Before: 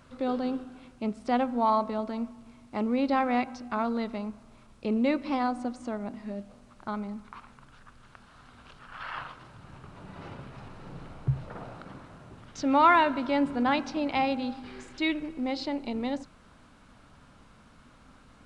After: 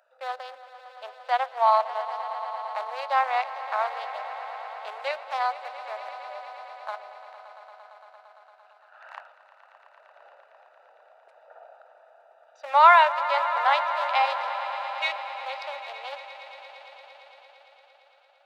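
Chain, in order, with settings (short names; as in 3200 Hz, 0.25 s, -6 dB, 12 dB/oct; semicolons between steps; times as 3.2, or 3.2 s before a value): Wiener smoothing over 41 samples; steep high-pass 610 Hz 48 dB/oct; on a send: swelling echo 0.114 s, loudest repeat 5, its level -16 dB; on the sum: gain +6 dB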